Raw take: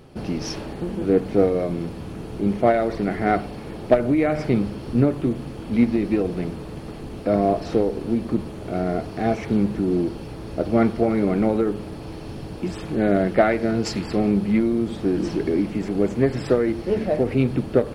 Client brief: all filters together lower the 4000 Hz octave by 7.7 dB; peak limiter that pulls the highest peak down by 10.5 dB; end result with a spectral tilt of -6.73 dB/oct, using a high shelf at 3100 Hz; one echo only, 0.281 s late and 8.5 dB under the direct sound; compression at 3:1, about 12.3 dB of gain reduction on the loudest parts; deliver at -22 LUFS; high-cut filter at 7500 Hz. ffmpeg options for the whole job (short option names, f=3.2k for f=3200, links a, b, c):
-af "lowpass=7.5k,highshelf=f=3.1k:g=-3.5,equalizer=f=4k:t=o:g=-7,acompressor=threshold=-29dB:ratio=3,alimiter=level_in=1.5dB:limit=-24dB:level=0:latency=1,volume=-1.5dB,aecho=1:1:281:0.376,volume=12.5dB"